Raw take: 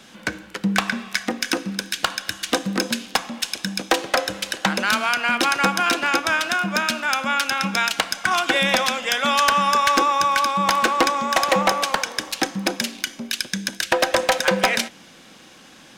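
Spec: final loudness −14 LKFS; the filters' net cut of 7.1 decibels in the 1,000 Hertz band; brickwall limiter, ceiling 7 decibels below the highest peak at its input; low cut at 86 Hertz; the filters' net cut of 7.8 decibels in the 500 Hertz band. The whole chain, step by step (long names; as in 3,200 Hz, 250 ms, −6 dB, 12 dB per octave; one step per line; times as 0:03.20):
high-pass filter 86 Hz
parametric band 500 Hz −7 dB
parametric band 1,000 Hz −7.5 dB
level +11.5 dB
brickwall limiter −1 dBFS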